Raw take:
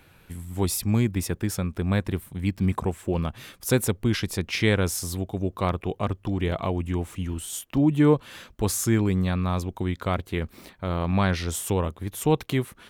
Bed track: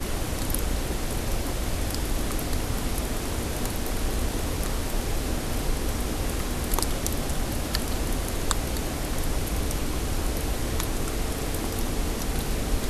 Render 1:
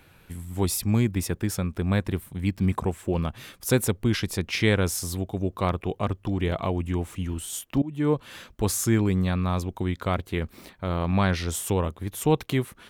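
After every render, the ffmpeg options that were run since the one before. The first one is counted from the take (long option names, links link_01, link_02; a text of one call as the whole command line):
ffmpeg -i in.wav -filter_complex "[0:a]asplit=2[link_01][link_02];[link_01]atrim=end=7.82,asetpts=PTS-STARTPTS,afade=type=out:start_time=7.816:duration=0.004:curve=hsin:silence=0.0749894[link_03];[link_02]atrim=start=7.82,asetpts=PTS-STARTPTS,afade=type=in:duration=0.49:silence=0.0749894[link_04];[link_03][link_04]concat=n=2:v=0:a=1" out.wav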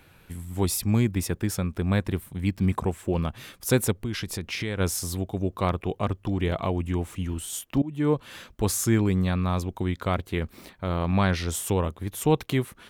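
ffmpeg -i in.wav -filter_complex "[0:a]asplit=3[link_01][link_02][link_03];[link_01]afade=type=out:start_time=3.92:duration=0.02[link_04];[link_02]acompressor=threshold=-27dB:ratio=4:attack=3.2:release=140:knee=1:detection=peak,afade=type=in:start_time=3.92:duration=0.02,afade=type=out:start_time=4.79:duration=0.02[link_05];[link_03]afade=type=in:start_time=4.79:duration=0.02[link_06];[link_04][link_05][link_06]amix=inputs=3:normalize=0" out.wav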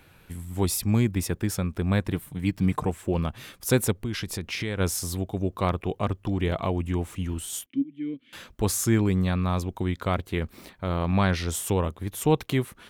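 ffmpeg -i in.wav -filter_complex "[0:a]asettb=1/sr,asplit=3[link_01][link_02][link_03];[link_01]atrim=end=2.124[link_04];[link_02]atrim=start=2.12:end=2.9,asetpts=PTS-STARTPTS,afade=type=in:duration=0.004:curve=qsin,afade=type=out:start_time=0.776:duration=0.004:curve=qsin,aecho=1:1:6.6:0.46,atrim=end_sample=34398[link_05];[link_03]atrim=start=2.896[link_06];[link_04][link_05]acrossfade=duration=0.004:curve1=hsin:curve2=qsin[link_07];[link_07][link_06]acrossfade=duration=0.004:curve1=qsin:curve2=hsin,asettb=1/sr,asplit=3[link_08][link_09][link_10];[link_08]atrim=end=7.664[link_11];[link_09]atrim=start=7.66:end=8.33,asetpts=PTS-STARTPTS,afade=type=in:duration=0.004:curve=qsin,afade=type=out:start_time=0.666:duration=0.004:curve=qsin,asplit=3[link_12][link_13][link_14];[link_12]bandpass=frequency=270:width_type=q:width=8,volume=0dB[link_15];[link_13]bandpass=frequency=2290:width_type=q:width=8,volume=-6dB[link_16];[link_14]bandpass=frequency=3010:width_type=q:width=8,volume=-9dB[link_17];[link_15][link_16][link_17]amix=inputs=3:normalize=0[link_18];[link_10]atrim=start=8.326[link_19];[link_11][link_18]acrossfade=duration=0.004:curve1=hsin:curve2=qsin[link_20];[link_20][link_19]acrossfade=duration=0.004:curve1=qsin:curve2=hsin" out.wav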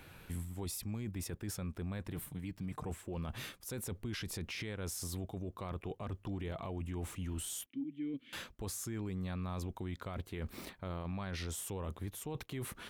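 ffmpeg -i in.wav -af "areverse,acompressor=threshold=-33dB:ratio=8,areverse,alimiter=level_in=9dB:limit=-24dB:level=0:latency=1:release=14,volume=-9dB" out.wav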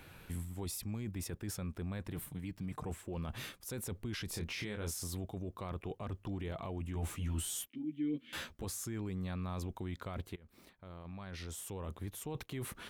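ffmpeg -i in.wav -filter_complex "[0:a]asettb=1/sr,asplit=3[link_01][link_02][link_03];[link_01]atrim=end=4.314[link_04];[link_02]atrim=start=4.31:end=4.94,asetpts=PTS-STARTPTS,afade=type=in:duration=0.004:curve=qsin,afade=type=out:start_time=0.626:duration=0.004:curve=qsin,asplit=2[link_05][link_06];[link_06]adelay=24,volume=-5.5dB[link_07];[link_05][link_07]amix=inputs=2:normalize=0,atrim=end_sample=27783[link_08];[link_03]atrim=start=4.936[link_09];[link_04][link_08]acrossfade=duration=0.004:curve1=hsin:curve2=qsin[link_10];[link_10][link_09]acrossfade=duration=0.004:curve1=qsin:curve2=hsin,asettb=1/sr,asplit=3[link_11][link_12][link_13];[link_11]atrim=end=6.944[link_14];[link_12]atrim=start=6.94:end=8.65,asetpts=PTS-STARTPTS,afade=type=in:duration=0.004:curve=qsin,afade=type=out:start_time=1.706:duration=0.004:curve=qsin,asplit=2[link_15][link_16];[link_16]adelay=13,volume=-2dB[link_17];[link_15][link_17]amix=inputs=2:normalize=0,atrim=end_sample=75411[link_18];[link_13]atrim=start=8.646[link_19];[link_14][link_18]acrossfade=duration=0.004:curve1=hsin:curve2=qsin[link_20];[link_20][link_19]acrossfade=duration=0.004:curve1=qsin:curve2=hsin,asplit=2[link_21][link_22];[link_21]atrim=end=10.36,asetpts=PTS-STARTPTS,afade=type=out:start_time=10.356:duration=0.004:curve=hsin:silence=0.0707946[link_23];[link_22]atrim=start=10.36,asetpts=PTS-STARTPTS,afade=type=in:duration=1.86:silence=0.0707946[link_24];[link_23][link_24]concat=n=2:v=0:a=1" out.wav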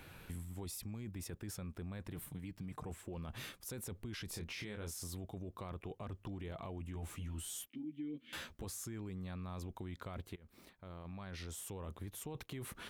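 ffmpeg -i in.wav -af "acompressor=threshold=-43dB:ratio=3" out.wav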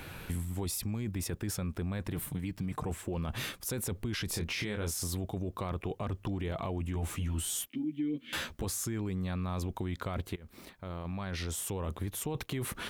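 ffmpeg -i in.wav -af "volume=10dB" out.wav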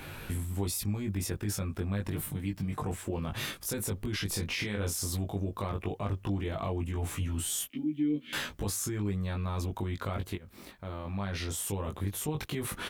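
ffmpeg -i in.wav -filter_complex "[0:a]asplit=2[link_01][link_02];[link_02]adelay=20,volume=-3dB[link_03];[link_01][link_03]amix=inputs=2:normalize=0" out.wav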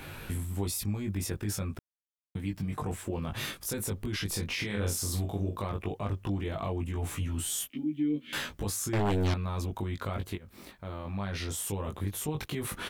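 ffmpeg -i in.wav -filter_complex "[0:a]asettb=1/sr,asplit=3[link_01][link_02][link_03];[link_01]atrim=end=4.664[link_04];[link_02]atrim=start=4.66:end=5.6,asetpts=PTS-STARTPTS,afade=type=in:duration=0.004:curve=qsin,afade=type=out:start_time=0.936:duration=0.004:curve=qsin,asplit=2[link_05][link_06];[link_06]adelay=44,volume=-7dB[link_07];[link_05][link_07]amix=inputs=2:normalize=0,atrim=end_sample=41454[link_08];[link_03]atrim=start=5.596[link_09];[link_04][link_08]acrossfade=duration=0.004:curve1=hsin:curve2=qsin[link_10];[link_10][link_09]acrossfade=duration=0.004:curve1=qsin:curve2=hsin,asettb=1/sr,asplit=3[link_11][link_12][link_13];[link_11]atrim=end=8.934[link_14];[link_12]atrim=start=8.93:end=9.34,asetpts=PTS-STARTPTS,afade=type=in:duration=0.004:curve=qsin,afade=type=out:start_time=0.406:duration=0.004:curve=qsin,aeval=exprs='0.0668*sin(PI/2*2.82*val(0)/0.0668)':channel_layout=same[link_15];[link_13]atrim=start=9.336[link_16];[link_14][link_15]acrossfade=duration=0.004:curve1=hsin:curve2=qsin[link_17];[link_17][link_16]acrossfade=duration=0.004:curve1=qsin:curve2=hsin,asplit=3[link_18][link_19][link_20];[link_18]atrim=end=1.79,asetpts=PTS-STARTPTS,afade=type=out:start_time=1.786:duration=0.004:curve=hsin[link_21];[link_19]atrim=start=1.79:end=2.35,asetpts=PTS-STARTPTS,volume=0[link_22];[link_20]atrim=start=2.35,asetpts=PTS-STARTPTS,afade=type=in:duration=0.004:curve=hsin[link_23];[link_21][link_22][link_23]concat=n=3:v=0:a=1" out.wav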